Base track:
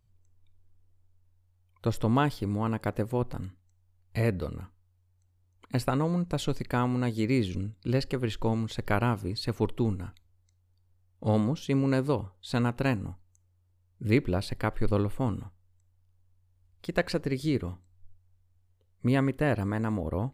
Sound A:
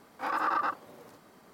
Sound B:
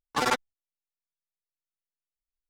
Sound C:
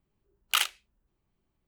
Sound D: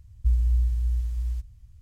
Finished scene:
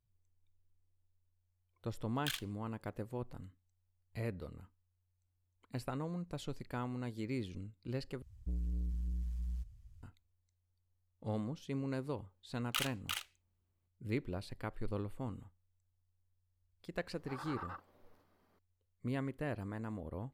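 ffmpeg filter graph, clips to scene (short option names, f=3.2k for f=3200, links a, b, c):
-filter_complex "[3:a]asplit=2[a][b];[0:a]volume=-13dB[c];[a]afreqshift=310[d];[4:a]asoftclip=type=tanh:threshold=-26.5dB[e];[b]aecho=1:1:348:0.668[f];[1:a]equalizer=f=7.9k:t=o:w=0.77:g=-9.5[g];[c]asplit=2[h][i];[h]atrim=end=8.224[j];[e]atrim=end=1.81,asetpts=PTS-STARTPTS,volume=-8dB[k];[i]atrim=start=10.026[l];[d]atrim=end=1.67,asetpts=PTS-STARTPTS,volume=-14.5dB,afade=t=in:d=0.004:c=hsin,afade=t=out:st=1.666:d=0.004:c=hsin,adelay=1730[m];[f]atrim=end=1.67,asetpts=PTS-STARTPTS,volume=-11dB,afade=t=in:d=0.004:c=hsin,afade=t=out:st=1.666:d=0.004:c=hsin,adelay=12210[n];[g]atrim=end=1.53,asetpts=PTS-STARTPTS,volume=-17dB,afade=t=in:d=0.004:c=hsin,afade=t=out:st=1.526:d=0.004:c=hsin,adelay=17060[o];[j][k]acrossfade=d=0.004:c1=hsin:c2=hsin[p];[p][l]acrossfade=d=0.004:c1=hsin:c2=hsin[q];[q][m][n][o]amix=inputs=4:normalize=0"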